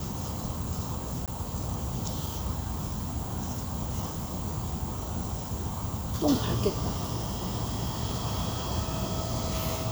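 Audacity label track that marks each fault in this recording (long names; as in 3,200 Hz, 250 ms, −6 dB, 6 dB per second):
1.260000	1.280000	drop-out 17 ms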